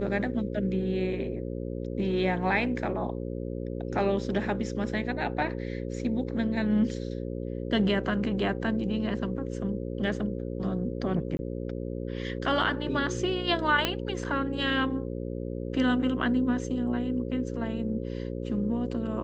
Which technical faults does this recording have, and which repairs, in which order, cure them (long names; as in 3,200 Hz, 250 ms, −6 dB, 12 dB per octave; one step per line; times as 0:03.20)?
mains buzz 60 Hz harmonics 9 −34 dBFS
0:11.37–0:11.39: drop-out 21 ms
0:13.85: click −10 dBFS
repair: click removal
hum removal 60 Hz, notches 9
repair the gap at 0:11.37, 21 ms